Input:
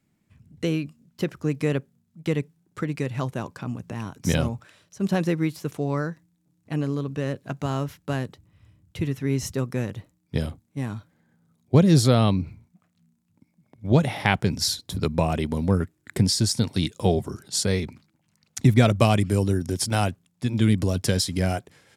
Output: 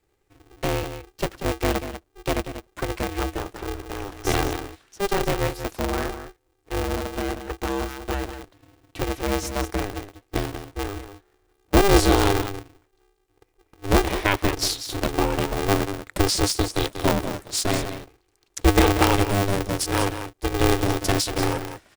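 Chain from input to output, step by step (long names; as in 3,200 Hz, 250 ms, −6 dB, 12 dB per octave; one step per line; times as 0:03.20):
single-tap delay 188 ms −10 dB
ring modulator with a square carrier 200 Hz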